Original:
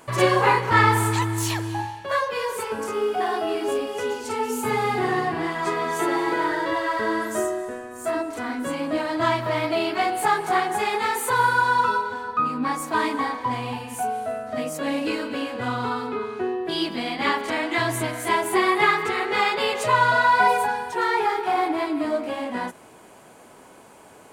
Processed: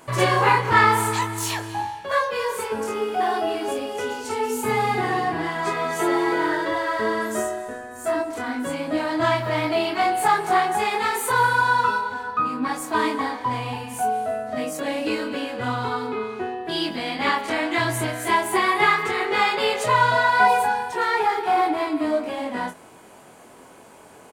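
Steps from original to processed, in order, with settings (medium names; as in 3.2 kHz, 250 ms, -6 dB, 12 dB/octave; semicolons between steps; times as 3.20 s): doubling 23 ms -5.5 dB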